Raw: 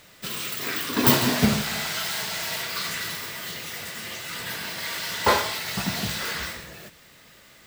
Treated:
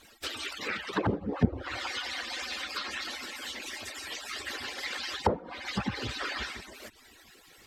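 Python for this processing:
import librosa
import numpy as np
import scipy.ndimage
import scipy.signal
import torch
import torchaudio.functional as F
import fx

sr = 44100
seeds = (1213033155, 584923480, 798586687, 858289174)

y = fx.hpss_only(x, sr, part='percussive')
y = fx.env_lowpass_down(y, sr, base_hz=360.0, full_db=-21.5)
y = F.gain(torch.from_numpy(y), 1.0).numpy()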